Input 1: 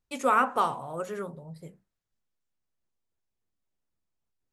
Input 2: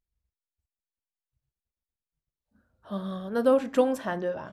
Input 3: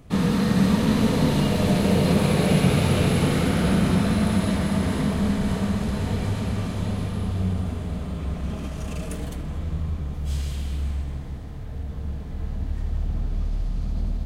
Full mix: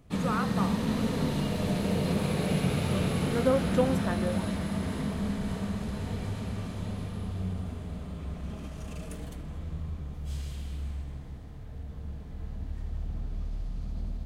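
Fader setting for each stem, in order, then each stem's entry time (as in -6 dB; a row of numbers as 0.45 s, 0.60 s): -9.5 dB, -4.0 dB, -8.5 dB; 0.00 s, 0.00 s, 0.00 s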